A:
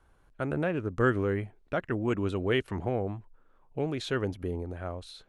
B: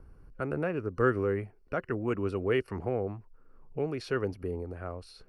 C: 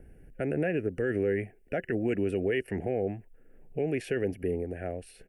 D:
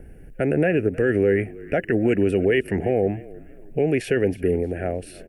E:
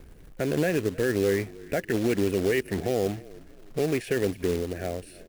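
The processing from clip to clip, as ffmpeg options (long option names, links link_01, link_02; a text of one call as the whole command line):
ffmpeg -i in.wav -filter_complex "[0:a]superequalizer=7b=1.58:10b=1.41:13b=0.316:14b=1.41:15b=0.447,acrossover=split=330[link_01][link_02];[link_01]acompressor=mode=upward:threshold=-36dB:ratio=2.5[link_03];[link_03][link_02]amix=inputs=2:normalize=0,volume=-3dB" out.wav
ffmpeg -i in.wav -af "firequalizer=gain_entry='entry(100,0);entry(180,5);entry(730,5);entry(1100,-23);entry(1700,10);entry(2900,7);entry(4200,-10);entry(7800,8)':delay=0.05:min_phase=1,alimiter=limit=-20dB:level=0:latency=1:release=40" out.wav
ffmpeg -i in.wav -filter_complex "[0:a]asplit=4[link_01][link_02][link_03][link_04];[link_02]adelay=313,afreqshift=-38,volume=-20.5dB[link_05];[link_03]adelay=626,afreqshift=-76,volume=-28.7dB[link_06];[link_04]adelay=939,afreqshift=-114,volume=-36.9dB[link_07];[link_01][link_05][link_06][link_07]amix=inputs=4:normalize=0,volume=9dB" out.wav
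ffmpeg -i in.wav -af "aeval=exprs='0.316*(cos(1*acos(clip(val(0)/0.316,-1,1)))-cos(1*PI/2))+0.00891*(cos(3*acos(clip(val(0)/0.316,-1,1)))-cos(3*PI/2))':channel_layout=same,acrusher=bits=3:mode=log:mix=0:aa=0.000001,volume=-5dB" out.wav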